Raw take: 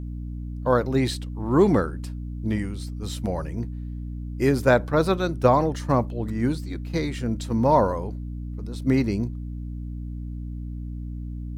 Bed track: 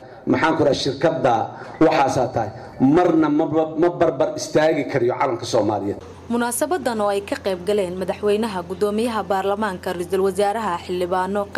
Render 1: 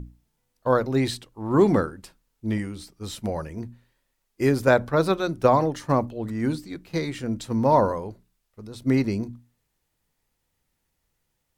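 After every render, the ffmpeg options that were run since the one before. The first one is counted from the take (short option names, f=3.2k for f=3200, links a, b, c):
-af "bandreject=f=60:t=h:w=6,bandreject=f=120:t=h:w=6,bandreject=f=180:t=h:w=6,bandreject=f=240:t=h:w=6,bandreject=f=300:t=h:w=6"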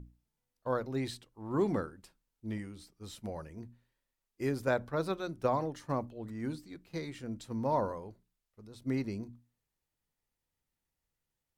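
-af "volume=-12dB"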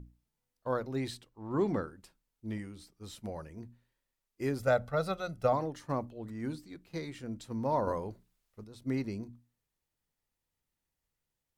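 -filter_complex "[0:a]asettb=1/sr,asplit=3[a][b][c];[a]atrim=end=1.294[d];[b]atrim=start=1.29:end=1.87,asetpts=PTS-STARTPTS,afade=t=in:d=0.004:c=qsin,afade=t=out:st=0.576:d=0.004:c=qsin,equalizer=f=11k:t=o:w=0.77:g=-10.5[e];[c]atrim=start=1.866[f];[d][e]acrossfade=d=0.004:c1=hsin:c2=qsin[g];[g][f]acrossfade=d=0.004:c1=qsin:c2=hsin,asettb=1/sr,asplit=3[h][i][j];[h]atrim=end=4.594[k];[i]atrim=start=4.59:end=5.53,asetpts=PTS-STARTPTS,afade=t=in:d=0.004:c=qsin,afade=t=out:st=0.936:d=0.004:c=qsin,aecho=1:1:1.5:0.72,atrim=end_sample=41454[l];[j]atrim=start=5.526[m];[k][l]acrossfade=d=0.004:c1=hsin:c2=qsin[n];[n][m]acrossfade=d=0.004:c1=qsin:c2=hsin,asettb=1/sr,asplit=3[o][p][q];[o]atrim=end=7.874[r];[p]atrim=start=7.87:end=8.64,asetpts=PTS-STARTPTS,afade=t=in:d=0.004:c=qsin,afade=t=out:st=0.766:d=0.004:c=qsin,acontrast=72[s];[q]atrim=start=8.636[t];[r][s]acrossfade=d=0.004:c1=hsin:c2=qsin[u];[u][t]acrossfade=d=0.004:c1=qsin:c2=hsin"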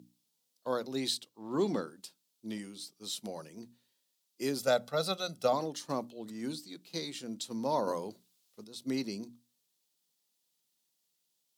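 -af "highpass=f=170:w=0.5412,highpass=f=170:w=1.3066,highshelf=f=2.7k:t=q:w=1.5:g=10"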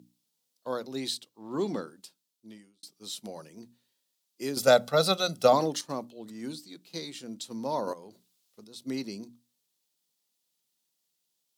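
-filter_complex "[0:a]asettb=1/sr,asplit=3[a][b][c];[a]atrim=end=7.934[d];[b]atrim=start=7.93:end=8.69,asetpts=PTS-STARTPTS,afade=t=in:d=0.004:c=qsin,afade=t=out:st=0.756:d=0.004:c=qsin,acompressor=threshold=-44dB:ratio=5:attack=3.2:release=140:knee=1:detection=peak[e];[c]atrim=start=8.686[f];[d][e]acrossfade=d=0.004:c1=hsin:c2=qsin[g];[g][f]acrossfade=d=0.004:c1=qsin:c2=hsin,asplit=4[h][i][j][k];[h]atrim=end=2.83,asetpts=PTS-STARTPTS,afade=t=out:st=1.95:d=0.88[l];[i]atrim=start=2.83:end=4.572,asetpts=PTS-STARTPTS,afade=t=in:d=0.004:c=hsin[m];[j]atrim=start=4.568:end=5.812,asetpts=PTS-STARTPTS,volume=8dB[n];[k]atrim=start=5.808[o];[l][m]concat=n=2:v=0:a=1[p];[p][n]acrossfade=d=0.004:c1=hsin:c2=hsin[q];[q][o]acrossfade=d=0.004:c1=hsin:c2=hsin"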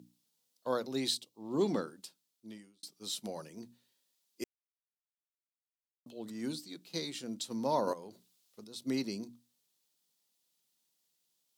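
-filter_complex "[0:a]asettb=1/sr,asplit=3[a][b][c];[a]atrim=end=1.154[d];[b]atrim=start=1.15:end=1.61,asetpts=PTS-STARTPTS,afade=t=in:d=0.004:c=qsin,afade=t=out:st=0.456:d=0.004:c=qsin,equalizer=f=1.5k:t=o:w=0.79:g=-14.5[e];[c]atrim=start=1.606[f];[d][e]acrossfade=d=0.004:c1=hsin:c2=qsin[g];[g][f]acrossfade=d=0.004:c1=qsin:c2=hsin,asplit=3[h][i][j];[h]atrim=end=4.44,asetpts=PTS-STARTPTS,afade=t=out:st=4.436:d=0.004:c=hsin[k];[i]atrim=start=4.44:end=6.06,asetpts=PTS-STARTPTS,volume=0[l];[j]atrim=start=6.06,asetpts=PTS-STARTPTS,afade=t=in:d=0.004:c=hsin[m];[k][l][m]concat=n=3:v=0:a=1"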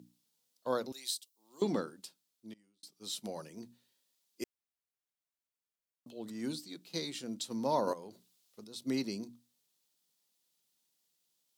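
-filter_complex "[0:a]asettb=1/sr,asplit=3[a][b][c];[a]atrim=end=0.924[d];[b]atrim=start=0.92:end=1.62,asetpts=PTS-STARTPTS,afade=t=in:d=0.004:c=qsin,afade=t=out:st=0.696:d=0.004:c=qsin,aderivative[e];[c]atrim=start=1.616[f];[d][e]acrossfade=d=0.004:c1=hsin:c2=qsin[g];[g][f]acrossfade=d=0.004:c1=qsin:c2=hsin,asplit=2[h][i];[h]atrim=end=2.54,asetpts=PTS-STARTPTS,afade=t=out:st=2.536:d=0.004:c=hsin:silence=0.0749894[j];[i]atrim=start=2.54,asetpts=PTS-STARTPTS,afade=t=in:d=0.93:c=qsin:silence=0.0749894[k];[j][k]concat=n=2:v=0:a=1"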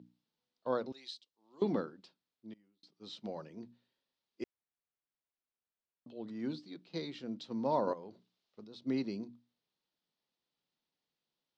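-af "lowpass=f=4.8k:w=0.5412,lowpass=f=4.8k:w=1.3066,highshelf=f=2.6k:g=-9"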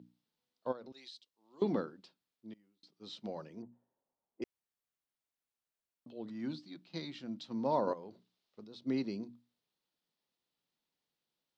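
-filter_complex "[0:a]asplit=3[a][b][c];[a]afade=t=out:st=0.71:d=0.02[d];[b]acompressor=threshold=-47dB:ratio=4:attack=3.2:release=140:knee=1:detection=peak,afade=t=in:st=0.71:d=0.02,afade=t=out:st=1.14:d=0.02[e];[c]afade=t=in:st=1.14:d=0.02[f];[d][e][f]amix=inputs=3:normalize=0,asettb=1/sr,asplit=3[g][h][i];[g]atrim=end=3.624[j];[h]atrim=start=3.62:end=4.42,asetpts=PTS-STARTPTS,afade=t=in:d=0.004:c=qsin,afade=t=out:st=0.796:d=0.004:c=qsin,lowpass=f=810:t=q:w=2.1[k];[i]atrim=start=4.416[l];[j][k]acrossfade=d=0.004:c1=hsin:c2=qsin[m];[m][l]acrossfade=d=0.004:c1=qsin:c2=hsin,asettb=1/sr,asplit=3[n][o][p];[n]atrim=end=6.294[q];[o]atrim=start=6.29:end=7.53,asetpts=PTS-STARTPTS,afade=t=in:d=0.004:c=qsin,afade=t=out:st=1.236:d=0.004:c=qsin,equalizer=f=440:w=3.9:g=-12[r];[p]atrim=start=7.526[s];[q][r]acrossfade=d=0.004:c1=hsin:c2=qsin[t];[t][s]acrossfade=d=0.004:c1=qsin:c2=hsin"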